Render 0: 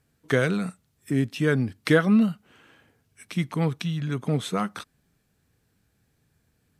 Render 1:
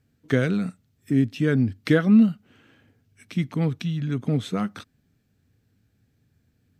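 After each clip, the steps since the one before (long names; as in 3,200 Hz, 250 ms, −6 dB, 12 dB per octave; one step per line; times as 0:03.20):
graphic EQ with 15 bands 100 Hz +9 dB, 250 Hz +7 dB, 1,000 Hz −5 dB, 10,000 Hz −8 dB
level −2 dB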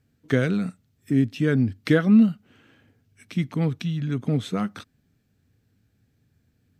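no processing that can be heard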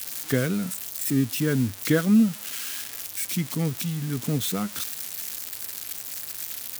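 spike at every zero crossing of −18 dBFS
level −2.5 dB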